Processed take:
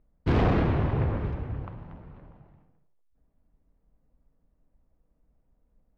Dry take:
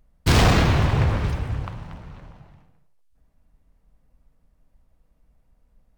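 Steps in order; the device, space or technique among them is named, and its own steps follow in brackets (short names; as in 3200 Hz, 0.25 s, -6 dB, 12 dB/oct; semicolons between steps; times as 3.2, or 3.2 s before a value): phone in a pocket (LPF 3000 Hz 12 dB/oct; bell 340 Hz +6 dB 1.6 oct; high shelf 2400 Hz -9 dB); gain -7.5 dB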